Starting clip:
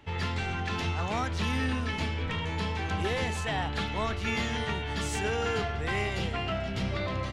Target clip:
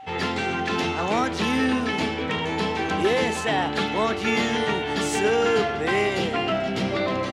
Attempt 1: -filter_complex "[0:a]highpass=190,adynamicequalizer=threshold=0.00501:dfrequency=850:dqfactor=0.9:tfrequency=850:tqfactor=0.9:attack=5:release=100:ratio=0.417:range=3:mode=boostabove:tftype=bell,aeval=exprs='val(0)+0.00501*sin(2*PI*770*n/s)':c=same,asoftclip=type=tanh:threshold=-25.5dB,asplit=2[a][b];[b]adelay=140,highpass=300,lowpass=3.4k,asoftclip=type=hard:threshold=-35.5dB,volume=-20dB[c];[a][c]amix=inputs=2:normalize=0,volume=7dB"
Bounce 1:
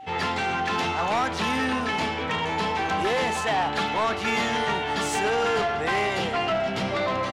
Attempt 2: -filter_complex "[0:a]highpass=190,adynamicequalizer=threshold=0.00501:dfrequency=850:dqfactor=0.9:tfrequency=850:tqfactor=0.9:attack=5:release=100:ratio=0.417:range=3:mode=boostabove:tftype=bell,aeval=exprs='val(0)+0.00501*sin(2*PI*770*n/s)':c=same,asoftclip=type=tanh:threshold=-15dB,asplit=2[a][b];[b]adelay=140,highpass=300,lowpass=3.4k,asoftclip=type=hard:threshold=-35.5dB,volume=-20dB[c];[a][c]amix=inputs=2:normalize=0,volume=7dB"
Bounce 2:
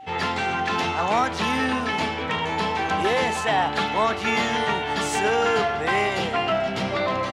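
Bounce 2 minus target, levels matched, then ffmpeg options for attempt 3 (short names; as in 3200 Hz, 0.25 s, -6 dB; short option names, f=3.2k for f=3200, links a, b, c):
250 Hz band -4.0 dB
-filter_complex "[0:a]highpass=190,adynamicequalizer=threshold=0.00501:dfrequency=340:dqfactor=0.9:tfrequency=340:tqfactor=0.9:attack=5:release=100:ratio=0.417:range=3:mode=boostabove:tftype=bell,aeval=exprs='val(0)+0.00501*sin(2*PI*770*n/s)':c=same,asoftclip=type=tanh:threshold=-15dB,asplit=2[a][b];[b]adelay=140,highpass=300,lowpass=3.4k,asoftclip=type=hard:threshold=-35.5dB,volume=-20dB[c];[a][c]amix=inputs=2:normalize=0,volume=7dB"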